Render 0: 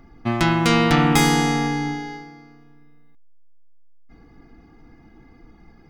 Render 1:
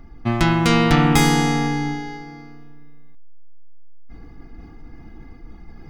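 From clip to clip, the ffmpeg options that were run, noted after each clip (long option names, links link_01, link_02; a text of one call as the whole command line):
ffmpeg -i in.wav -af "lowshelf=frequency=86:gain=10,areverse,acompressor=mode=upward:threshold=-31dB:ratio=2.5,areverse" out.wav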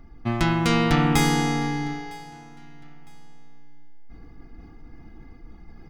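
ffmpeg -i in.wav -af "aecho=1:1:957|1914:0.0631|0.0227,volume=-4.5dB" out.wav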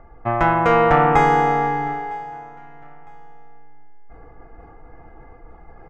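ffmpeg -i in.wav -af "firequalizer=gain_entry='entry(120,0);entry(240,-7);entry(500,14);entry(1600,7);entry(4200,-18);entry(6500,-12);entry(11000,-27)':delay=0.05:min_phase=1" out.wav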